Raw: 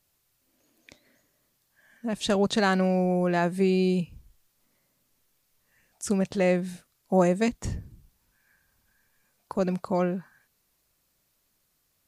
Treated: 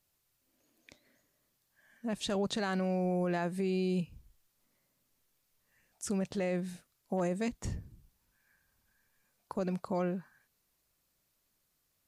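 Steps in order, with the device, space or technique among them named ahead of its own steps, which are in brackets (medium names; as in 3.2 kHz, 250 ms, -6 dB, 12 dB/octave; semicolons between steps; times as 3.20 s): clipper into limiter (hard clipper -12.5 dBFS, distortion -38 dB; peak limiter -19.5 dBFS, peak gain reduction 7 dB); trim -5.5 dB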